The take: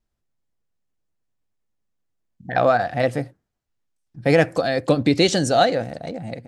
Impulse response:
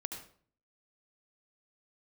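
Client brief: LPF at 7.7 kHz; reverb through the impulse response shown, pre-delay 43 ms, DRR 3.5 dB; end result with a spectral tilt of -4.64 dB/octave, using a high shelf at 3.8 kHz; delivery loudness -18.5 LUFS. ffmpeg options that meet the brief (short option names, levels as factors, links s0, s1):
-filter_complex "[0:a]lowpass=7700,highshelf=f=3800:g=7,asplit=2[s0][s1];[1:a]atrim=start_sample=2205,adelay=43[s2];[s1][s2]afir=irnorm=-1:irlink=0,volume=0.708[s3];[s0][s3]amix=inputs=2:normalize=0,volume=0.944"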